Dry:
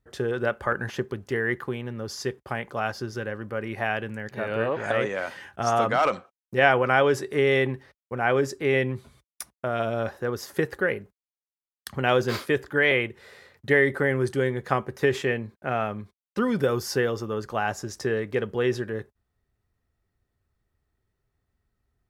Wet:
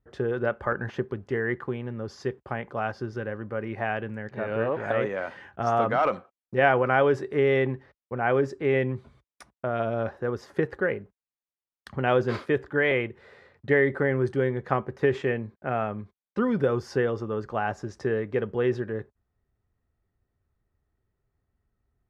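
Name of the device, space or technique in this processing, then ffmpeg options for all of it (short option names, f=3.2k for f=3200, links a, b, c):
through cloth: -af "lowpass=8.9k,highshelf=f=3.6k:g=-17.5"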